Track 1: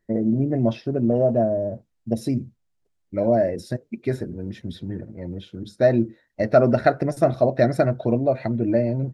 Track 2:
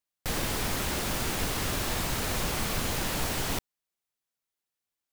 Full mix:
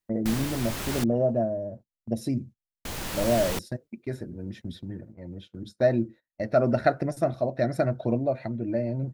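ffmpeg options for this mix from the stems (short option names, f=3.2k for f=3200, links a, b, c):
-filter_complex "[0:a]highshelf=f=8.5k:g=4,agate=range=-16dB:threshold=-38dB:ratio=16:detection=peak,equalizer=f=430:t=o:w=0.26:g=-4,volume=-4dB[a];[1:a]volume=-0.5dB,asplit=3[b][c][d];[b]atrim=end=1.04,asetpts=PTS-STARTPTS,afade=t=out:st=1.036:d=0.004:c=hsin[e];[c]atrim=start=1.04:end=2.85,asetpts=PTS-STARTPTS,volume=0[f];[d]atrim=start=2.85,asetpts=PTS-STARTPTS,afade=t=in:d=0.004:c=hsin[g];[e][f][g]concat=n=3:v=0:a=1[h];[a][h]amix=inputs=2:normalize=0,tremolo=f=0.87:d=0.36"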